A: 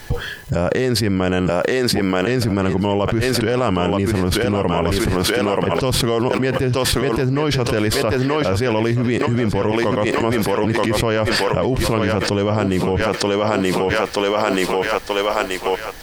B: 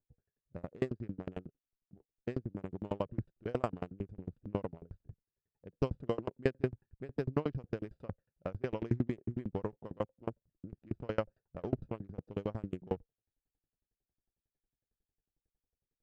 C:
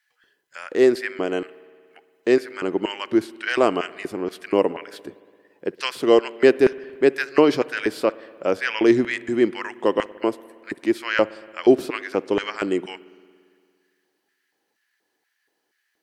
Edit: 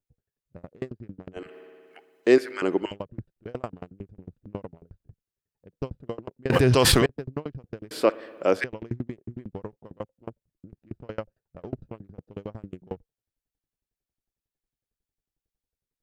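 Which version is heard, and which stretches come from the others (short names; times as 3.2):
B
1.45–2.85 from C, crossfade 0.24 s
6.5–7.06 from A
7.91–8.64 from C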